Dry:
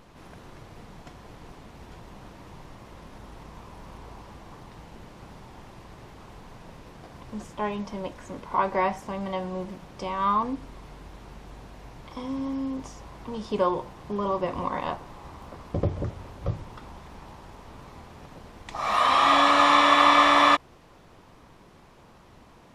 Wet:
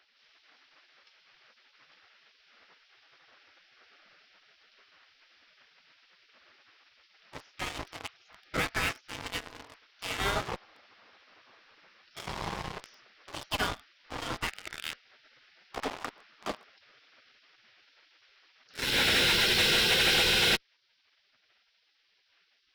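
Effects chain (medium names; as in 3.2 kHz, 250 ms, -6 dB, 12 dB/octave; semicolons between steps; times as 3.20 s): elliptic low-pass 5.3 kHz, stop band 40 dB; spectral gate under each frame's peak -20 dB weak; in parallel at -9 dB: fuzz box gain 42 dB, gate -44 dBFS; on the sum: trim -2.5 dB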